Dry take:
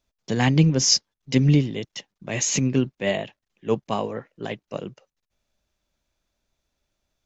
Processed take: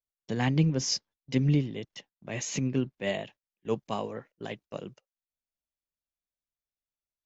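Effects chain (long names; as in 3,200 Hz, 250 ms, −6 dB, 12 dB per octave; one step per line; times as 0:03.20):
noise gate −44 dBFS, range −19 dB
high-shelf EQ 5,700 Hz −9 dB, from 0:03.03 +4.5 dB
level −7 dB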